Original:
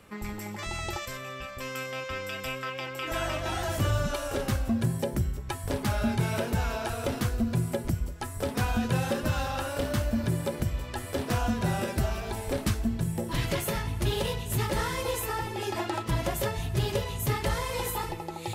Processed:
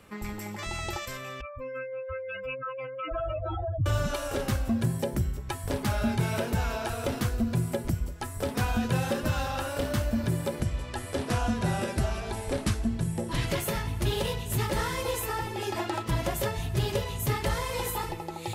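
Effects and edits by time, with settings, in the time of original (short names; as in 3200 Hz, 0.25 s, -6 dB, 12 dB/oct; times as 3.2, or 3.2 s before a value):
1.41–3.86 spectral contrast raised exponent 3.4
10.61–13.5 brick-wall FIR low-pass 12000 Hz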